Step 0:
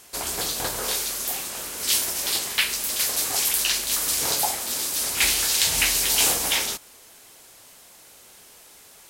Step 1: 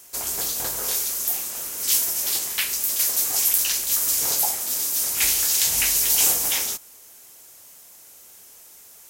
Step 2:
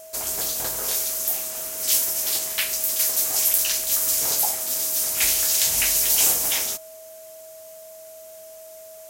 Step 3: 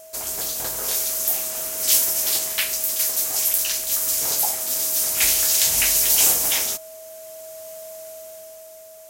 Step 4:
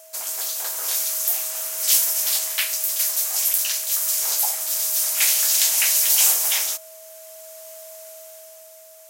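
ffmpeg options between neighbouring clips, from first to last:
-af "aexciter=amount=2.8:drive=2.6:freq=5600,volume=0.596"
-af "aeval=exprs='val(0)+0.00891*sin(2*PI*640*n/s)':c=same"
-af "dynaudnorm=f=150:g=13:m=2.24,volume=0.891"
-af "highpass=770"

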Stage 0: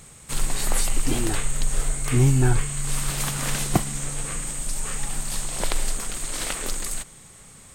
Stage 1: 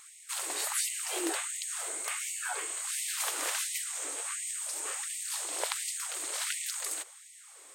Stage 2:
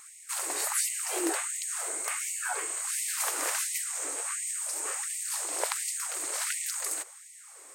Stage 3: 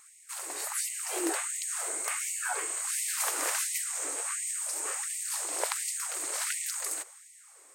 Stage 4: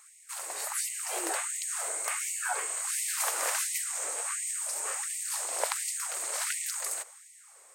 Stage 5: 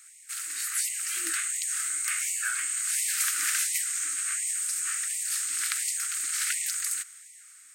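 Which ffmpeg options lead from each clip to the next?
-af "afftfilt=real='re*gte(b*sr/1024,270*pow(1900/270,0.5+0.5*sin(2*PI*1.4*pts/sr)))':imag='im*gte(b*sr/1024,270*pow(1900/270,0.5+0.5*sin(2*PI*1.4*pts/sr)))':win_size=1024:overlap=0.75,volume=0.631"
-af "equalizer=f=3400:w=1.8:g=-8,volume=1.5"
-af "dynaudnorm=f=410:g=5:m=2,volume=0.501"
-af "lowshelf=f=390:t=q:w=1.5:g=-11"
-af "asuperstop=centerf=640:order=12:qfactor=0.62,volume=1.58"

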